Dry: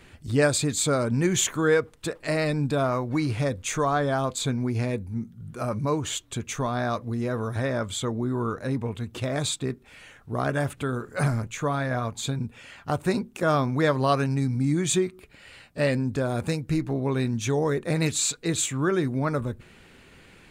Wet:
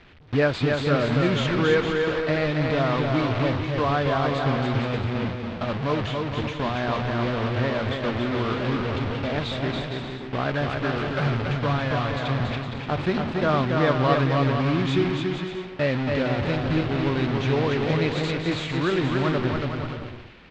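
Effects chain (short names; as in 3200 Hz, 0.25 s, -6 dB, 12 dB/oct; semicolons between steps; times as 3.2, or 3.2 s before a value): delta modulation 64 kbps, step -23.5 dBFS; LPF 3800 Hz 24 dB/oct; gate with hold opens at -22 dBFS; bouncing-ball echo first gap 0.28 s, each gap 0.65×, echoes 5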